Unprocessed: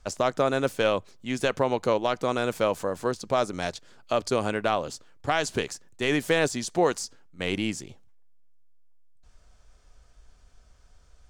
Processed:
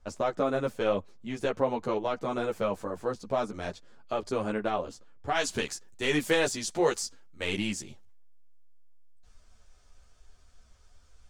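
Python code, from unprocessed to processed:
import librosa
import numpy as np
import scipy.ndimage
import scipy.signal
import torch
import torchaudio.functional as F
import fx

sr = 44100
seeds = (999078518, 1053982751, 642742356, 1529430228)

y = fx.high_shelf(x, sr, hz=2000.0, db=fx.steps((0.0, -8.5), (5.34, 3.5)))
y = fx.ensemble(y, sr)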